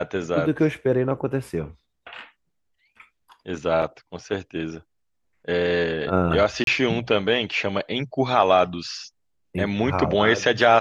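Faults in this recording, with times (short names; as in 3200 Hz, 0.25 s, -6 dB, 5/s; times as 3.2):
3.82 gap 4.9 ms
6.64–6.67 gap 32 ms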